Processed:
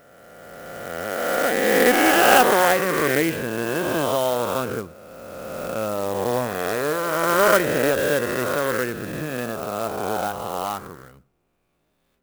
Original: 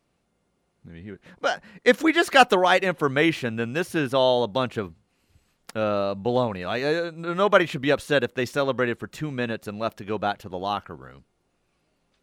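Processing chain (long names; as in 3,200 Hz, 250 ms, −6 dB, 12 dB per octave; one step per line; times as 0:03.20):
peak hold with a rise ahead of every peak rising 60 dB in 2.58 s
high-shelf EQ 4,700 Hz −10.5 dB
on a send at −22 dB: convolution reverb RT60 0.30 s, pre-delay 72 ms
on the sum: converter with an unsteady clock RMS 0.042 ms
level −3 dB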